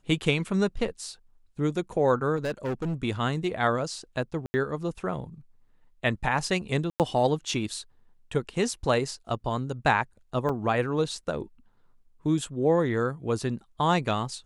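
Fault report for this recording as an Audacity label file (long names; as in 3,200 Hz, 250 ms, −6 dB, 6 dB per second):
2.360000	2.950000	clipping −25.5 dBFS
4.460000	4.540000	drop-out 80 ms
6.900000	7.000000	drop-out 98 ms
10.490000	10.500000	drop-out 5.2 ms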